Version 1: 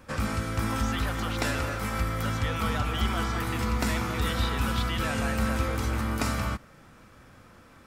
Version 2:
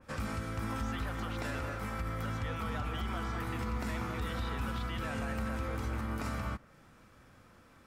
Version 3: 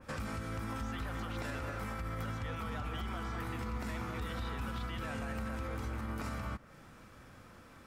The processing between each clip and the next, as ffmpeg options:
-af "alimiter=limit=0.1:level=0:latency=1:release=49,adynamicequalizer=threshold=0.00398:dfrequency=2700:dqfactor=0.7:tfrequency=2700:tqfactor=0.7:attack=5:release=100:ratio=0.375:range=3:mode=cutabove:tftype=highshelf,volume=0.473"
-af "alimiter=level_in=3.35:limit=0.0631:level=0:latency=1:release=199,volume=0.299,volume=1.58"

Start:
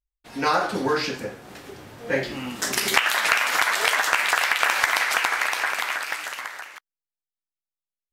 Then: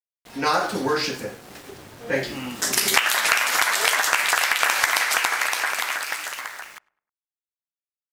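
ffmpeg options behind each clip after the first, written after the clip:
-filter_complex "[0:a]aeval=exprs='val(0)*gte(abs(val(0)),0.00631)':c=same,asplit=2[s0][s1];[s1]adelay=104,lowpass=f=1800:p=1,volume=0.0631,asplit=2[s2][s3];[s3]adelay=104,lowpass=f=1800:p=1,volume=0.42,asplit=2[s4][s5];[s5]adelay=104,lowpass=f=1800:p=1,volume=0.42[s6];[s0][s2][s4][s6]amix=inputs=4:normalize=0,adynamicequalizer=threshold=0.0178:dfrequency=4400:dqfactor=0.7:tfrequency=4400:tqfactor=0.7:attack=5:release=100:ratio=0.375:range=3:mode=boostabove:tftype=highshelf"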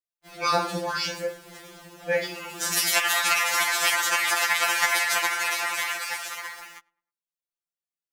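-af "afftfilt=real='re*2.83*eq(mod(b,8),0)':imag='im*2.83*eq(mod(b,8),0)':win_size=2048:overlap=0.75"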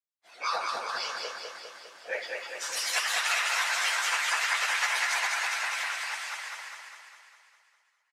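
-filter_complex "[0:a]afftfilt=real='hypot(re,im)*cos(2*PI*random(0))':imag='hypot(re,im)*sin(2*PI*random(1))':win_size=512:overlap=0.75,highpass=740,lowpass=7900,asplit=2[s0][s1];[s1]aecho=0:1:202|404|606|808|1010|1212|1414|1616:0.668|0.394|0.233|0.137|0.081|0.0478|0.0282|0.0166[s2];[s0][s2]amix=inputs=2:normalize=0"

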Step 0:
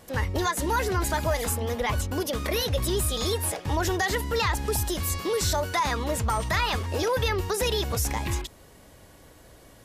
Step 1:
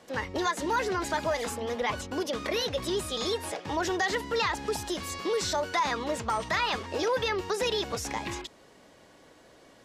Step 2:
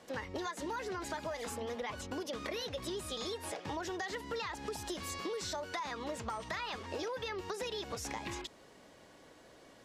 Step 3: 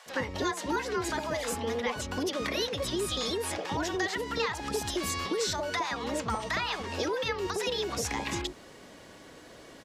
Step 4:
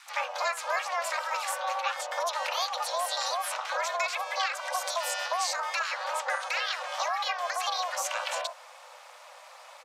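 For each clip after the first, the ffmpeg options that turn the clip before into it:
-filter_complex "[0:a]acrossover=split=170 7400:gain=0.158 1 0.141[s0][s1][s2];[s0][s1][s2]amix=inputs=3:normalize=0,volume=0.841"
-af "acompressor=threshold=0.02:ratio=6,volume=0.75"
-filter_complex "[0:a]acrossover=split=740[s0][s1];[s0]adelay=60[s2];[s2][s1]amix=inputs=2:normalize=0,volume=2.82"
-af "aeval=exprs='val(0)*sin(2*PI*180*n/s)':c=same,afreqshift=490,volume=1.5"

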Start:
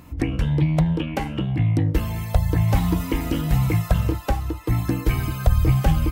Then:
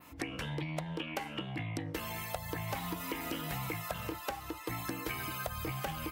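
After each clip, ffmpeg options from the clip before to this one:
-af "highpass=f=950:p=1,adynamicequalizer=threshold=0.00355:dfrequency=6600:dqfactor=0.77:tfrequency=6600:tqfactor=0.77:attack=5:release=100:ratio=0.375:range=2:mode=cutabove:tftype=bell,acompressor=threshold=0.02:ratio=6"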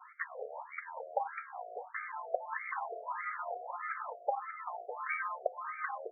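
-af "afftfilt=real='re*between(b*sr/1024,530*pow(1700/530,0.5+0.5*sin(2*PI*1.6*pts/sr))/1.41,530*pow(1700/530,0.5+0.5*sin(2*PI*1.6*pts/sr))*1.41)':imag='im*between(b*sr/1024,530*pow(1700/530,0.5+0.5*sin(2*PI*1.6*pts/sr))/1.41,530*pow(1700/530,0.5+0.5*sin(2*PI*1.6*pts/sr))*1.41)':win_size=1024:overlap=0.75,volume=2.37"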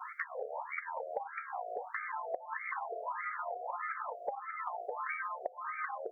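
-af "acompressor=threshold=0.00447:ratio=6,volume=3.35"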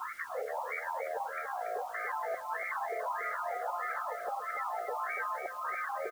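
-af "alimiter=level_in=2.99:limit=0.0631:level=0:latency=1:release=28,volume=0.335,aecho=1:1:285:0.398,acrusher=bits=9:mix=0:aa=0.000001,volume=1.78"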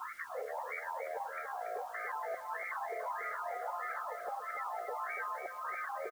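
-af "aecho=1:1:389:0.0891,volume=0.668"

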